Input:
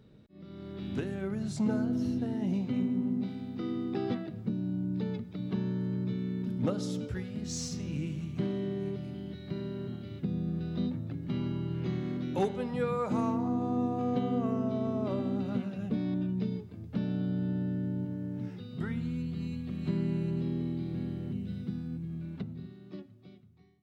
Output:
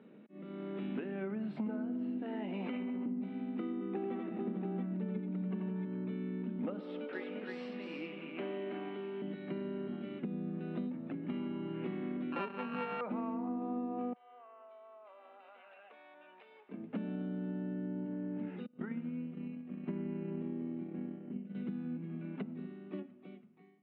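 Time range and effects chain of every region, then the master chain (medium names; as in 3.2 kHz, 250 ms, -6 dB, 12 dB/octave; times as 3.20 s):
2.22–3.06 s: frequency weighting A + level flattener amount 100%
3.72–5.85 s: treble shelf 5.6 kHz -10.5 dB + comb 5.2 ms, depth 33% + multi-tap echo 87/371/442/680 ms -4/-14.5/-9.5/-3 dB
6.80–9.22 s: high-pass 440 Hz + delay 325 ms -4 dB
12.32–13.01 s: sorted samples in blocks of 32 samples + careless resampling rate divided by 2×, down filtered, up zero stuff
14.13–16.69 s: high-pass 700 Hz 24 dB/octave + compression 12:1, threshold -57 dBFS
18.66–21.55 s: expander -30 dBFS + distance through air 320 m
whole clip: elliptic band-pass 210–2700 Hz, stop band 40 dB; compression, threshold -40 dBFS; trim +4.5 dB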